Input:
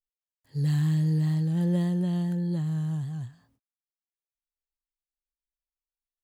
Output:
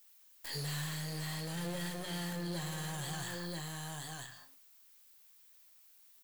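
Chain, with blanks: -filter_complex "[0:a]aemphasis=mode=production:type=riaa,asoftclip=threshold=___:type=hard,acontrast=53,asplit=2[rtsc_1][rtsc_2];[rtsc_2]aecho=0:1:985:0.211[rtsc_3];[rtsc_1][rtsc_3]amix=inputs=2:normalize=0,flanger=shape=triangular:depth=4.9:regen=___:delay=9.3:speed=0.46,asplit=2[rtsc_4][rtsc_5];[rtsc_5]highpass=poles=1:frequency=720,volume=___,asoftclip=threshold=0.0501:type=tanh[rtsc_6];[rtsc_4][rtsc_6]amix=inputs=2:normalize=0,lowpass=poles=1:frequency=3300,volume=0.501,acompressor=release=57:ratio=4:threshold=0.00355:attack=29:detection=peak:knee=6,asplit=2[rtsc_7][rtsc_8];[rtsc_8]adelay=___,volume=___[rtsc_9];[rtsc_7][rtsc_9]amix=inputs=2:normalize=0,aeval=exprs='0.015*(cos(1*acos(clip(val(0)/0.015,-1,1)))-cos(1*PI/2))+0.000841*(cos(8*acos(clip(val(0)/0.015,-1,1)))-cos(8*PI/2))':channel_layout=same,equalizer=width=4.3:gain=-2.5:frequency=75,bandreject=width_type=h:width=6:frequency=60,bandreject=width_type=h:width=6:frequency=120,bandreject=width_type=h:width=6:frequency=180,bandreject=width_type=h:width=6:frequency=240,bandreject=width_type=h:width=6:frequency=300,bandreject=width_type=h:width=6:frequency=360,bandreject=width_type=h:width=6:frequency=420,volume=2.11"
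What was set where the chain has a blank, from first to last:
0.0251, -68, 11.2, 41, 0.224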